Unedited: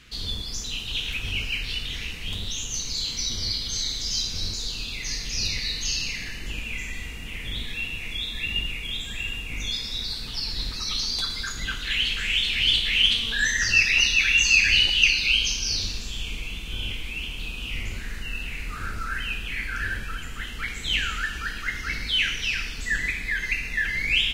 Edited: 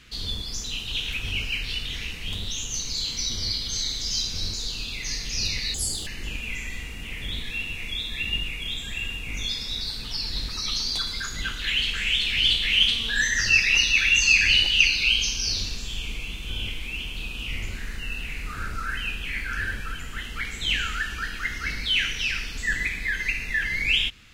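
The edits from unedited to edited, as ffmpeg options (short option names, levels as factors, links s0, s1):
-filter_complex "[0:a]asplit=3[s0][s1][s2];[s0]atrim=end=5.744[s3];[s1]atrim=start=5.74:end=6.3,asetpts=PTS-STARTPTS,asetrate=74970,aresample=44100,atrim=end_sample=14527,asetpts=PTS-STARTPTS[s4];[s2]atrim=start=6.296[s5];[s3][s4]acrossfade=d=0.004:c1=hsin:c2=hsin[s6];[s6][s5]acrossfade=d=0.004:c1=hsin:c2=hsin"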